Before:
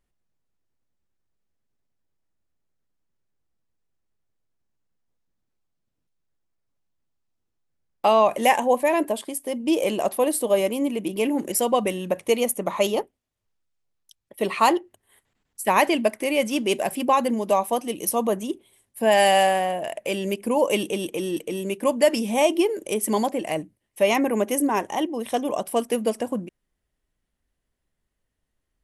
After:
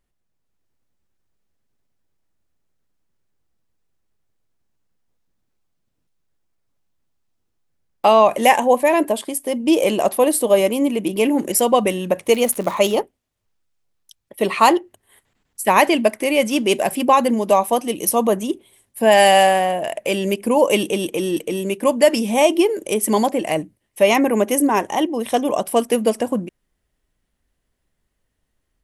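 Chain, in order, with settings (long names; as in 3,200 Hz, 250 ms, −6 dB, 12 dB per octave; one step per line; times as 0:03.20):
automatic gain control gain up to 4 dB
0:12.26–0:12.94: surface crackle 130 per second −26 dBFS
level +2 dB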